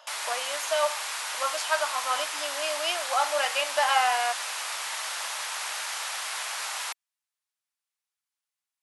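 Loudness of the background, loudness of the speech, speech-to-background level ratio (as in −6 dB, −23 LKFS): −31.0 LKFS, −28.0 LKFS, 3.0 dB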